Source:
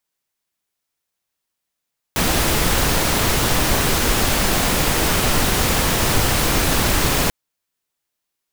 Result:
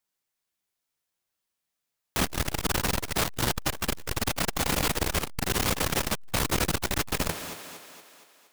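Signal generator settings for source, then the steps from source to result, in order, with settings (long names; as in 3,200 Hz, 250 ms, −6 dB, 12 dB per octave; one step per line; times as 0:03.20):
noise pink, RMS −17.5 dBFS 5.14 s
flanger 0.71 Hz, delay 9.1 ms, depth 7.9 ms, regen +53%
feedback echo with a high-pass in the loop 234 ms, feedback 55%, high-pass 200 Hz, level −14.5 dB
saturating transformer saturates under 310 Hz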